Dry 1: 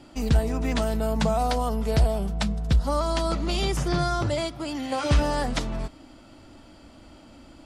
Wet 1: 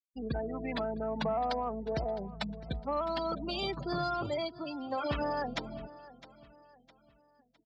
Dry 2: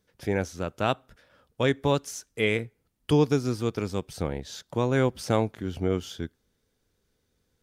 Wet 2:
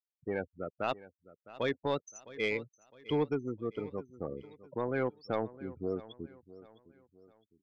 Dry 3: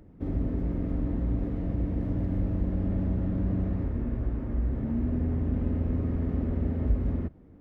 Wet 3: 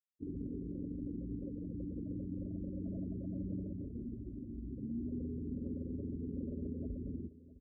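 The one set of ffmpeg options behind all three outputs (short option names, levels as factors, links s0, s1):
-filter_complex "[0:a]afftfilt=real='re*gte(hypot(re,im),0.0501)':imag='im*gte(hypot(re,im),0.0501)':win_size=1024:overlap=0.75,highpass=f=330:p=1,asoftclip=type=tanh:threshold=0.158,asplit=2[s0][s1];[s1]aecho=0:1:659|1318|1977:0.126|0.0491|0.0191[s2];[s0][s2]amix=inputs=2:normalize=0,volume=0.596"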